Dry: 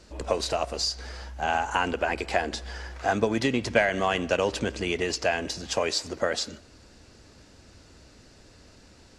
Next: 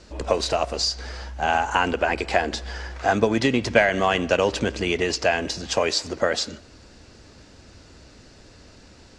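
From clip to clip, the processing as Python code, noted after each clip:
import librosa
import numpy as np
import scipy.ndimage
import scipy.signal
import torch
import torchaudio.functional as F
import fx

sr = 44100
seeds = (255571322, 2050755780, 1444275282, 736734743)

y = scipy.signal.sosfilt(scipy.signal.butter(2, 8000.0, 'lowpass', fs=sr, output='sos'), x)
y = y * 10.0 ** (4.5 / 20.0)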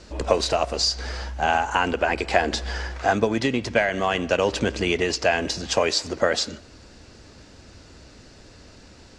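y = fx.rider(x, sr, range_db=5, speed_s=0.5)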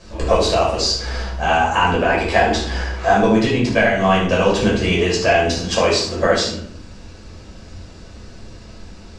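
y = x + 10.0 ** (-11.5 / 20.0) * np.pad(x, (int(74 * sr / 1000.0), 0))[:len(x)]
y = fx.room_shoebox(y, sr, seeds[0], volume_m3=550.0, walls='furnished', distance_m=5.6)
y = y * 10.0 ** (-3.0 / 20.0)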